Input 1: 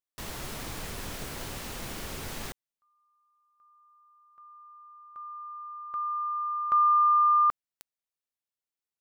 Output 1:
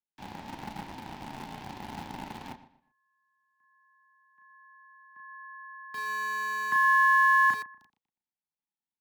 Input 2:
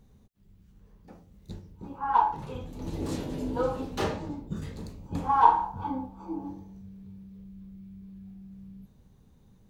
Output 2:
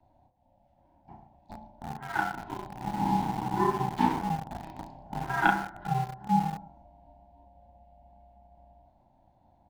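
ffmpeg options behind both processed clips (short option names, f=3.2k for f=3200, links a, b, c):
-filter_complex "[0:a]asuperstop=centerf=670:order=20:qfactor=7.2,acrossover=split=280|1200[a][b][c];[a]acompressor=threshold=-46dB:ratio=12:attack=88:release=37:knee=1:detection=rms[d];[d][b][c]amix=inputs=3:normalize=0,asplit=2[e][f];[f]adelay=34,volume=-3.5dB[g];[e][g]amix=inputs=2:normalize=0,asplit=2[h][i];[i]adelay=120,lowpass=f=4.4k:p=1,volume=-12dB,asplit=2[j][k];[k]adelay=120,lowpass=f=4.4k:p=1,volume=0.3,asplit=2[l][m];[m]adelay=120,lowpass=f=4.4k:p=1,volume=0.3[n];[h][j][l][n]amix=inputs=4:normalize=0,aeval=exprs='0.75*(cos(1*acos(clip(val(0)/0.75,-1,1)))-cos(1*PI/2))+0.0376*(cos(2*acos(clip(val(0)/0.75,-1,1)))-cos(2*PI/2))+0.106*(cos(3*acos(clip(val(0)/0.75,-1,1)))-cos(3*PI/2))+0.00531*(cos(5*acos(clip(val(0)/0.75,-1,1)))-cos(5*PI/2))':c=same,firequalizer=gain_entry='entry(160,0);entry(340,9);entry(750,-19);entry(1200,-9)':delay=0.05:min_phase=1,afreqshift=190,acrossover=split=420 4400:gain=0.0794 1 0.0891[o][p][q];[o][p][q]amix=inputs=3:normalize=0,aeval=exprs='val(0)*sin(2*PI*320*n/s)':c=same,asplit=2[r][s];[s]aeval=exprs='val(0)*gte(abs(val(0)),0.00794)':c=same,volume=-3.5dB[t];[r][t]amix=inputs=2:normalize=0,volume=7dB"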